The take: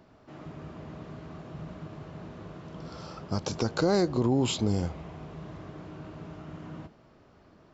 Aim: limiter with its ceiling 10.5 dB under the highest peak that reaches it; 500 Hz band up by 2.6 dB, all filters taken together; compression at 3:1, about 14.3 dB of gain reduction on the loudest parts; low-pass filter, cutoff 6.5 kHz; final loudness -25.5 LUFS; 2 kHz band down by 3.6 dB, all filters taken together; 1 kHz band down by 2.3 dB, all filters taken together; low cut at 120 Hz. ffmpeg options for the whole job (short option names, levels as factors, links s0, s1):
-af "highpass=120,lowpass=6500,equalizer=f=500:t=o:g=4.5,equalizer=f=1000:t=o:g=-4.5,equalizer=f=2000:t=o:g=-3.5,acompressor=threshold=0.0112:ratio=3,volume=10,alimiter=limit=0.168:level=0:latency=1"